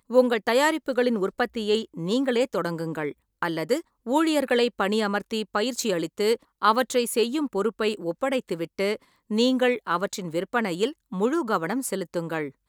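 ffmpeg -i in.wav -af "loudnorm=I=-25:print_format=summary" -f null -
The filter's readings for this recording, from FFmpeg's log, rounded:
Input Integrated:    -25.8 LUFS
Input True Peak:      -6.0 dBTP
Input LRA:             3.5 LU
Input Threshold:     -35.8 LUFS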